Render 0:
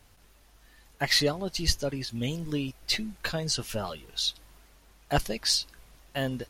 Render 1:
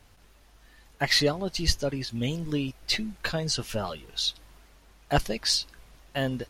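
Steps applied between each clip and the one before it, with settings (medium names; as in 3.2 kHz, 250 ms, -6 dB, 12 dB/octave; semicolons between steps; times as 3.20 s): treble shelf 8.1 kHz -6.5 dB; trim +2 dB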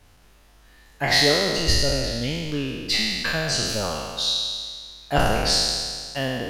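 spectral sustain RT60 1.83 s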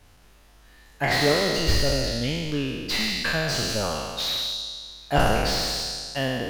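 slew-rate limiter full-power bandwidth 230 Hz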